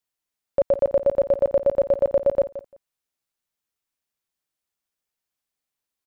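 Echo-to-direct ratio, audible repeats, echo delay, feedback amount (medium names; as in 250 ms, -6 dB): -14.0 dB, 2, 173 ms, 16%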